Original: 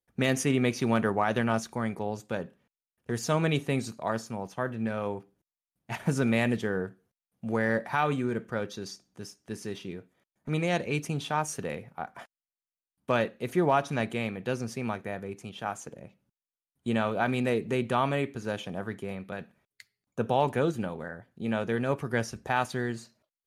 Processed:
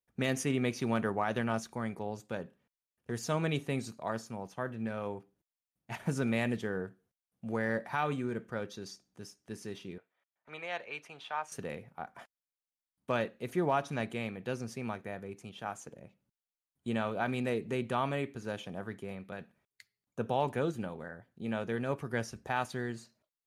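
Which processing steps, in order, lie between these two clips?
9.98–11.52 three-band isolator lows -23 dB, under 570 Hz, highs -16 dB, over 3900 Hz; gain -5.5 dB

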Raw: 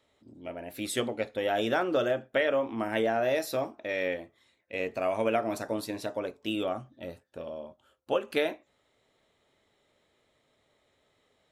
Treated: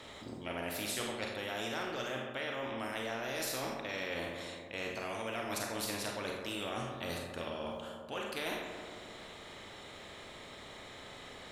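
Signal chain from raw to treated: high shelf 11000 Hz -9.5 dB; reverse; compressor 12:1, threshold -42 dBFS, peak gain reduction 20.5 dB; reverse; darkening echo 0.135 s, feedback 59%, low-pass 1800 Hz, level -10.5 dB; Schroeder reverb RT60 0.36 s, combs from 31 ms, DRR 2.5 dB; spectral compressor 2:1; gain +7.5 dB

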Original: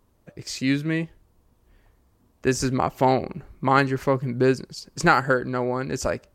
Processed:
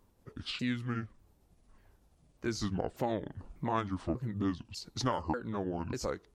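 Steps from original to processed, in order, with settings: repeated pitch sweeps -9.5 st, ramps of 0.593 s; compressor 2:1, threshold -34 dBFS, peak gain reduction 11.5 dB; gain -2.5 dB

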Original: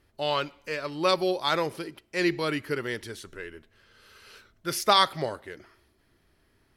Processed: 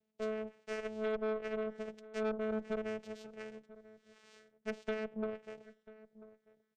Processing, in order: treble ducked by the level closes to 540 Hz, closed at -23 dBFS; gate -55 dBFS, range -9 dB; flange 0.39 Hz, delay 0.3 ms, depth 1.4 ms, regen +58%; vocoder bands 4, saw 217 Hz; ten-band EQ 250 Hz -10 dB, 500 Hz +5 dB, 1000 Hz -10 dB; tube stage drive 37 dB, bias 0.6; outdoor echo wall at 170 m, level -18 dB; gain +6 dB

